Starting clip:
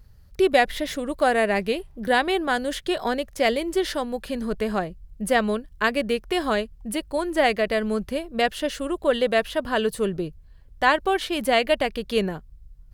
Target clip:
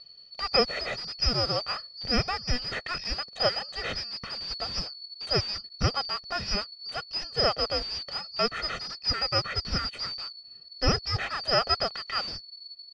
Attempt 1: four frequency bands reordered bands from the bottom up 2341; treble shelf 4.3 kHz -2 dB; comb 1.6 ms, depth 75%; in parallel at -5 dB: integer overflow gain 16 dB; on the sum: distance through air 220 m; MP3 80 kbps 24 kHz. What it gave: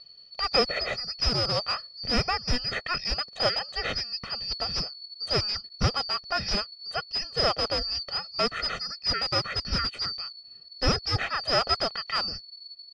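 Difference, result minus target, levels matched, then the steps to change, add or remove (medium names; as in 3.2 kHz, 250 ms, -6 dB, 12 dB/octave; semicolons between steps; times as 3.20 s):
integer overflow: distortion -13 dB
change: integer overflow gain 25.5 dB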